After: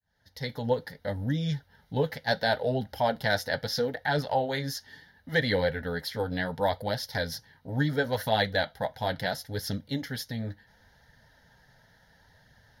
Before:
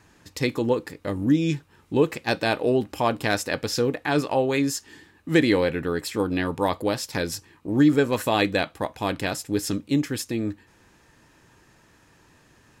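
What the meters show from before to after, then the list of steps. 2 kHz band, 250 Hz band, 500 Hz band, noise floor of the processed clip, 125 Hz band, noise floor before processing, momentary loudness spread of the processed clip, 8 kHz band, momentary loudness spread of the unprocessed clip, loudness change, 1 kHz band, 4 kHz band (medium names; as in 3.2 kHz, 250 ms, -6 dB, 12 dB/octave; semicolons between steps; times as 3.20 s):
-2.0 dB, -11.0 dB, -5.0 dB, -63 dBFS, -2.5 dB, -58 dBFS, 9 LU, -10.0 dB, 9 LU, -5.5 dB, -3.0 dB, -2.0 dB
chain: fade-in on the opening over 0.73 s; flange 0.72 Hz, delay 0.3 ms, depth 7.8 ms, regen -42%; static phaser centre 1.7 kHz, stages 8; trim +3.5 dB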